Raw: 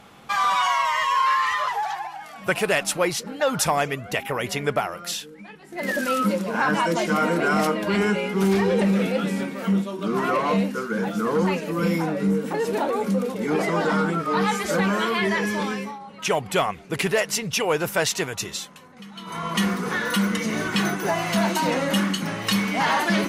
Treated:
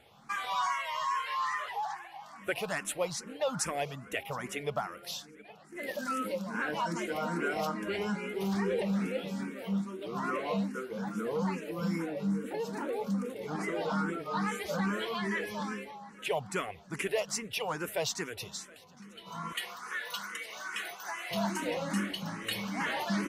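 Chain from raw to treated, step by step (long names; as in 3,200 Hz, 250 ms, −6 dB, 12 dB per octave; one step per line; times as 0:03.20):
0:19.52–0:21.31: high-pass filter 870 Hz 12 dB per octave
on a send: repeating echo 718 ms, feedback 56%, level −23.5 dB
on the sum: frequency shifter mixed with the dry sound +2.4 Hz
level −8 dB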